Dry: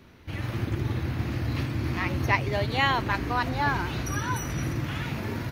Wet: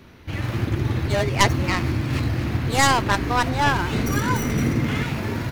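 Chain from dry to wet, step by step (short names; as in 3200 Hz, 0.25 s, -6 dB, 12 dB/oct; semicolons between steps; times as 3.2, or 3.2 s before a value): tracing distortion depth 0.23 ms; 1.08–2.68 reverse; 3.92–5.04 small resonant body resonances 230/430/2100 Hz, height 10 dB; gain +5.5 dB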